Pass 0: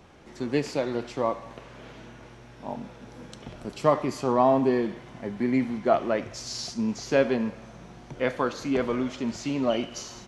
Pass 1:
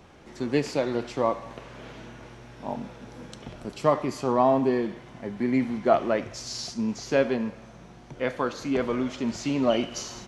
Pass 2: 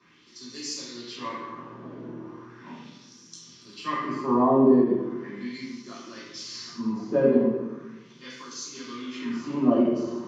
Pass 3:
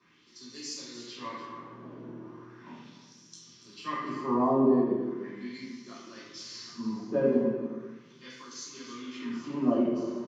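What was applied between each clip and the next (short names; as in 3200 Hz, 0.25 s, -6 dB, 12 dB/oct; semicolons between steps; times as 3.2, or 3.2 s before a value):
vocal rider within 4 dB 2 s
LFO band-pass sine 0.38 Hz 610–6100 Hz; reverb RT60 1.0 s, pre-delay 3 ms, DRR -9.5 dB; ending taper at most 200 dB/s; gain -5 dB
echo 0.292 s -12.5 dB; gain -5 dB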